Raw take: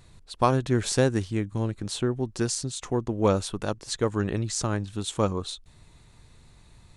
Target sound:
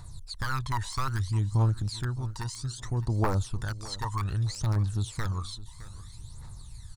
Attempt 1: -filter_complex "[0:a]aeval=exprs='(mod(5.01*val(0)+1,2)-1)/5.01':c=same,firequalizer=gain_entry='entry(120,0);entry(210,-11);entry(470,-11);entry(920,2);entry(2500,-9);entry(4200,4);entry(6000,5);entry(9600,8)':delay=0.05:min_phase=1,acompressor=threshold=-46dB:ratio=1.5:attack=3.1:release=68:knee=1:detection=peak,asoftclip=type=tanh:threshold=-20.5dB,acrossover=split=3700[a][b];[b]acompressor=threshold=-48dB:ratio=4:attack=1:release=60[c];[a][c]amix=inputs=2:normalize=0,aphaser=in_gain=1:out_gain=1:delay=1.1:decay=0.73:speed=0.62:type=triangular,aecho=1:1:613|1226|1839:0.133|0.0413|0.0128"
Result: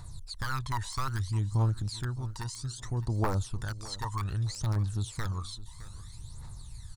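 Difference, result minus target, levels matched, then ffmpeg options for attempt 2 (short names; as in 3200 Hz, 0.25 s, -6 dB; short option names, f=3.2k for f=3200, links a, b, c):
compressor: peak gain reduction +2.5 dB
-filter_complex "[0:a]aeval=exprs='(mod(5.01*val(0)+1,2)-1)/5.01':c=same,firequalizer=gain_entry='entry(120,0);entry(210,-11);entry(470,-11);entry(920,2);entry(2500,-9);entry(4200,4);entry(6000,5);entry(9600,8)':delay=0.05:min_phase=1,acompressor=threshold=-38dB:ratio=1.5:attack=3.1:release=68:knee=1:detection=peak,asoftclip=type=tanh:threshold=-20.5dB,acrossover=split=3700[a][b];[b]acompressor=threshold=-48dB:ratio=4:attack=1:release=60[c];[a][c]amix=inputs=2:normalize=0,aphaser=in_gain=1:out_gain=1:delay=1.1:decay=0.73:speed=0.62:type=triangular,aecho=1:1:613|1226|1839:0.133|0.0413|0.0128"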